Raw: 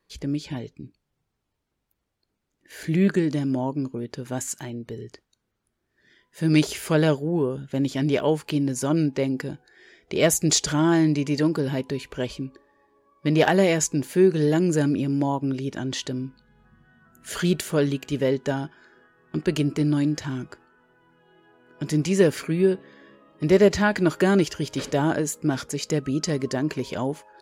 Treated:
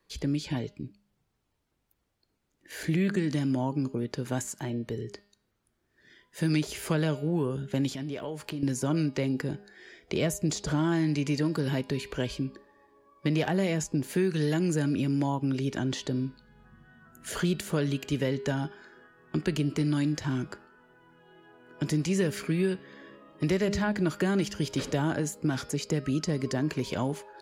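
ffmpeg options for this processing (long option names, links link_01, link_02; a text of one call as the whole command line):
ffmpeg -i in.wav -filter_complex "[0:a]asettb=1/sr,asplit=3[link_01][link_02][link_03];[link_01]atrim=end=7.914[link_04];[link_02]atrim=start=7.91:end=8.63,asetpts=PTS-STARTPTS,afade=type=in:duration=0.004:curve=qsin,afade=type=out:start_time=0.716:duration=0.004:curve=qsin,acompressor=threshold=-33dB:ratio=8:attack=3.2:release=140:knee=1:detection=peak[link_05];[link_03]atrim=start=8.626[link_06];[link_04][link_05]acrossfade=duration=0.004:curve1=hsin:curve2=qsin[link_07];[link_07][link_06]acrossfade=duration=0.004:curve1=qsin:curve2=hsin,bandreject=frequency=203.3:width_type=h:width=4,bandreject=frequency=406.6:width_type=h:width=4,bandreject=frequency=609.9:width_type=h:width=4,bandreject=frequency=813.2:width_type=h:width=4,bandreject=frequency=1016.5:width_type=h:width=4,bandreject=frequency=1219.8:width_type=h:width=4,bandreject=frequency=1423.1:width_type=h:width=4,bandreject=frequency=1626.4:width_type=h:width=4,bandreject=frequency=1829.7:width_type=h:width=4,bandreject=frequency=2033:width_type=h:width=4,bandreject=frequency=2236.3:width_type=h:width=4,bandreject=frequency=2439.6:width_type=h:width=4,bandreject=frequency=2642.9:width_type=h:width=4,bandreject=frequency=2846.2:width_type=h:width=4,bandreject=frequency=3049.5:width_type=h:width=4,bandreject=frequency=3252.8:width_type=h:width=4,bandreject=frequency=3456.1:width_type=h:width=4,bandreject=frequency=3659.4:width_type=h:width=4,bandreject=frequency=3862.7:width_type=h:width=4,bandreject=frequency=4066:width_type=h:width=4,bandreject=frequency=4269.3:width_type=h:width=4,bandreject=frequency=4472.6:width_type=h:width=4,bandreject=frequency=4675.9:width_type=h:width=4,bandreject=frequency=4879.2:width_type=h:width=4,bandreject=frequency=5082.5:width_type=h:width=4,bandreject=frequency=5285.8:width_type=h:width=4,acrossover=split=230|1100[link_08][link_09][link_10];[link_08]acompressor=threshold=-30dB:ratio=4[link_11];[link_09]acompressor=threshold=-33dB:ratio=4[link_12];[link_10]acompressor=threshold=-38dB:ratio=4[link_13];[link_11][link_12][link_13]amix=inputs=3:normalize=0,volume=1.5dB" out.wav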